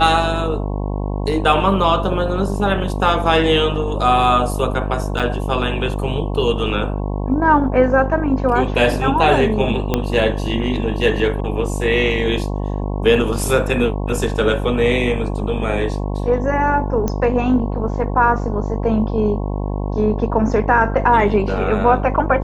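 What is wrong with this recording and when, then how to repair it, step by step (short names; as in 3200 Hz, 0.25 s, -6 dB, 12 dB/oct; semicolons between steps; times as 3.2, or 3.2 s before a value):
buzz 50 Hz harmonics 22 -22 dBFS
5.19–5.2 gap 6.7 ms
9.94 pop -4 dBFS
17.08 pop -10 dBFS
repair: de-click; de-hum 50 Hz, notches 22; interpolate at 5.19, 6.7 ms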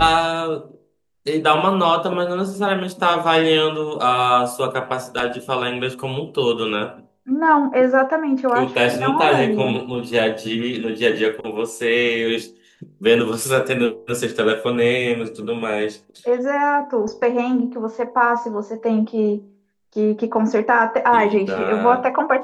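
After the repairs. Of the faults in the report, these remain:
9.94 pop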